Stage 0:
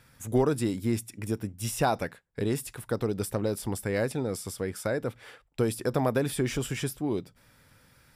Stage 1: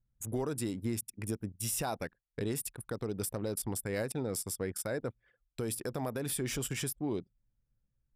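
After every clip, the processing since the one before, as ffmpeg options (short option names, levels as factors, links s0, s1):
-af "anlmdn=0.631,highshelf=f=5900:g=10.5,alimiter=limit=0.0891:level=0:latency=1:release=179,volume=0.668"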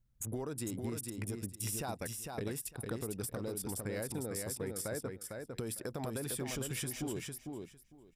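-filter_complex "[0:a]acompressor=threshold=0.00708:ratio=3,asplit=2[s0][s1];[s1]aecho=0:1:453|906|1359:0.596|0.0953|0.0152[s2];[s0][s2]amix=inputs=2:normalize=0,volume=1.58"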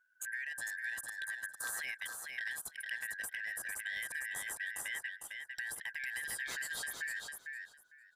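-af "afftfilt=real='real(if(lt(b,272),68*(eq(floor(b/68),0)*3+eq(floor(b/68),1)*0+eq(floor(b/68),2)*1+eq(floor(b/68),3)*2)+mod(b,68),b),0)':imag='imag(if(lt(b,272),68*(eq(floor(b/68),0)*3+eq(floor(b/68),1)*0+eq(floor(b/68),2)*1+eq(floor(b/68),3)*2)+mod(b,68),b),0)':win_size=2048:overlap=0.75,volume=0.794"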